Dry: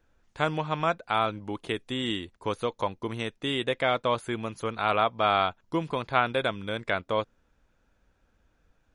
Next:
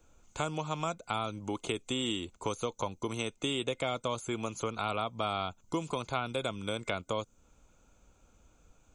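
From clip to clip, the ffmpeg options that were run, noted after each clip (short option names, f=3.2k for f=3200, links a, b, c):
-filter_complex "[0:a]superequalizer=11b=0.282:15b=3.98,acrossover=split=280|4700[a][b][c];[a]acompressor=threshold=-45dB:ratio=4[d];[b]acompressor=threshold=-38dB:ratio=4[e];[c]acompressor=threshold=-51dB:ratio=4[f];[d][e][f]amix=inputs=3:normalize=0,volume=4.5dB"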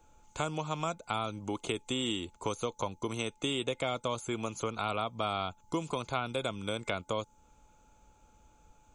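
-af "aeval=exprs='val(0)+0.000501*sin(2*PI*860*n/s)':c=same"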